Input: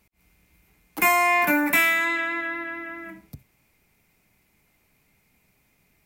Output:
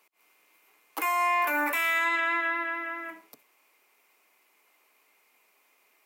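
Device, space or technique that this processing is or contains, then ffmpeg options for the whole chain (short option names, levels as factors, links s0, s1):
laptop speaker: -af "highpass=f=370:w=0.5412,highpass=f=370:w=1.3066,equalizer=f=1100:t=o:w=0.49:g=8,equalizer=f=2900:t=o:w=0.26:g=4,alimiter=limit=0.112:level=0:latency=1:release=64"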